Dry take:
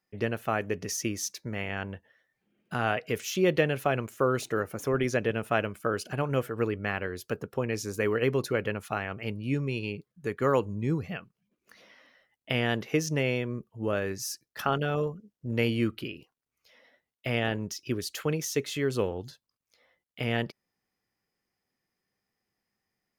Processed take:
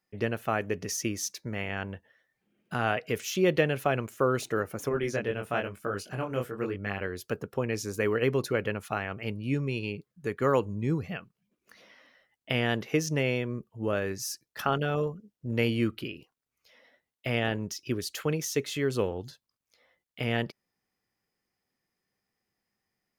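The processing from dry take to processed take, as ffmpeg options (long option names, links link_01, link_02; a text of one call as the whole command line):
ffmpeg -i in.wav -filter_complex "[0:a]asettb=1/sr,asplit=3[link_01][link_02][link_03];[link_01]atrim=end=4.894[link_04];[link_02]atrim=start=4.89:end=7.01,asetpts=PTS-STARTPTS,afade=type=in:duration=0.004:curve=qsin,afade=type=out:start_time=2.116:duration=0.004:curve=qsin,flanger=delay=20:depth=4.8:speed=1[link_05];[link_03]atrim=start=7.006[link_06];[link_04][link_05]acrossfade=duration=0.004:curve1=hsin:curve2=qsin[link_07];[link_07][link_06]acrossfade=duration=0.004:curve1=qsin:curve2=hsin" out.wav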